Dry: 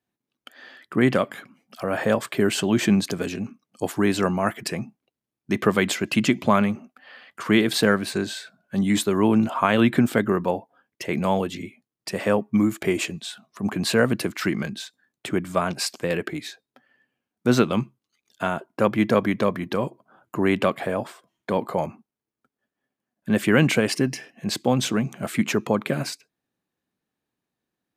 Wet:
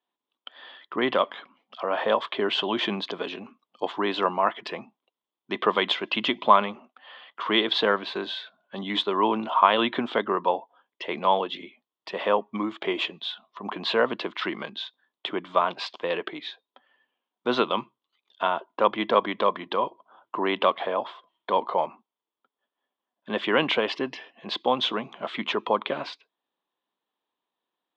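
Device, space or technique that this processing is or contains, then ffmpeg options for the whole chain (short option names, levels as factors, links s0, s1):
phone earpiece: -af "highpass=440,equalizer=f=1000:t=q:w=4:g=9,equalizer=f=1600:t=q:w=4:g=-5,equalizer=f=2300:t=q:w=4:g=-4,equalizer=f=3400:t=q:w=4:g=10,lowpass=f=3600:w=0.5412,lowpass=f=3600:w=1.3066"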